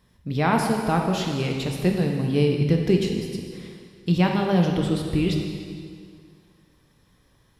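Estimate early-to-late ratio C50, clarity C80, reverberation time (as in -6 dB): 3.0 dB, 4.5 dB, 2.1 s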